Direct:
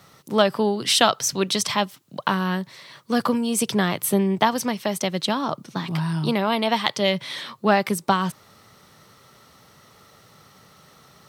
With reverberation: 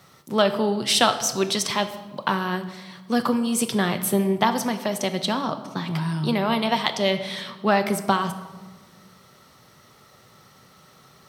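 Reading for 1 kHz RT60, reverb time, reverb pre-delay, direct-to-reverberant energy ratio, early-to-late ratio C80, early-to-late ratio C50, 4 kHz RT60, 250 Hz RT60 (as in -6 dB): 1.3 s, 1.4 s, 5 ms, 8.0 dB, 13.0 dB, 11.5 dB, 0.85 s, 2.0 s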